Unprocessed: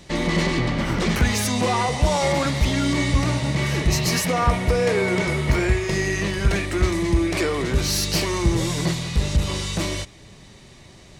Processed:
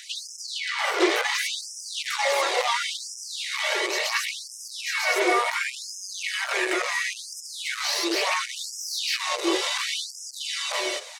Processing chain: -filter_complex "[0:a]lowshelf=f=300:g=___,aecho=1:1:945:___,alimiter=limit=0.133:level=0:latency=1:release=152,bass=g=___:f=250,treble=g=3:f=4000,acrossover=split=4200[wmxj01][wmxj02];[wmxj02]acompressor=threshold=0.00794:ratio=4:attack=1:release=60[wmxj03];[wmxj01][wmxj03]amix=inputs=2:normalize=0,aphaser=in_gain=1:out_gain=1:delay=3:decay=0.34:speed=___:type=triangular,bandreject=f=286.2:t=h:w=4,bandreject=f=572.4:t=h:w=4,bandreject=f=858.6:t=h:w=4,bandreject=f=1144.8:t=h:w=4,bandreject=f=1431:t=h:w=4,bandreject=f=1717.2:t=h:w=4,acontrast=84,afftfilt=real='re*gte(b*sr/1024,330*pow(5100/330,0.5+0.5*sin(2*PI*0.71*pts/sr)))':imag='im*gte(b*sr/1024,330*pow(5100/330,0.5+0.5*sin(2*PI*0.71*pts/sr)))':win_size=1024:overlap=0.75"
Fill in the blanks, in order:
-3.5, 0.631, 14, 0.48